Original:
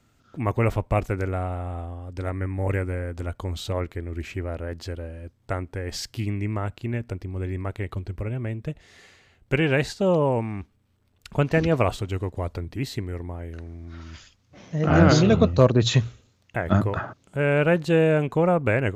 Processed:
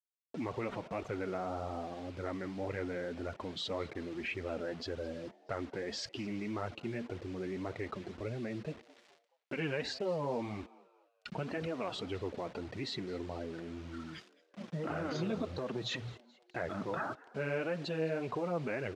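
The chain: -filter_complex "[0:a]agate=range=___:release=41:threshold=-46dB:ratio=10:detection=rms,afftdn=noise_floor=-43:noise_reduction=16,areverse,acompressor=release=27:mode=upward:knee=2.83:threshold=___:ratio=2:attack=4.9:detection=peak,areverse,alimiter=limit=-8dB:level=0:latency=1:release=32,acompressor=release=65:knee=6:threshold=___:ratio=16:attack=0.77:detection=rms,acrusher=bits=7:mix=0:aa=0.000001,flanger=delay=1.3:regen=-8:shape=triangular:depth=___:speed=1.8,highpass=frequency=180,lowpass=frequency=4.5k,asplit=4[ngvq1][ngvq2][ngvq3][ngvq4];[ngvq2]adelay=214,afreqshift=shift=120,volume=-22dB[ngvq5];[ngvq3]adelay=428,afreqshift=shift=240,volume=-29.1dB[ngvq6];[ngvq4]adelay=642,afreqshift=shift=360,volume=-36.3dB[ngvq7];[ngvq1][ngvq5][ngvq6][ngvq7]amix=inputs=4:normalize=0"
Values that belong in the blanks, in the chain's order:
-16dB, -25dB, -25dB, 5.1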